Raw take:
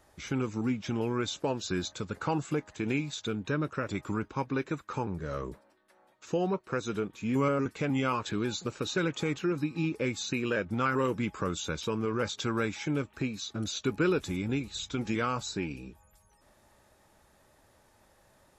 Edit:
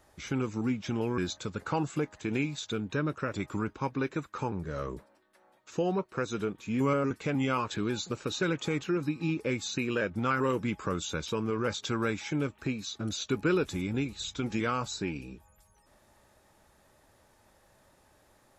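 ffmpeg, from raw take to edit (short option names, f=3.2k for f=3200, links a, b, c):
-filter_complex "[0:a]asplit=2[a][b];[a]atrim=end=1.182[c];[b]atrim=start=1.728[d];[c][d]acrossfade=d=0.004:c1=hsin:c2=hsin"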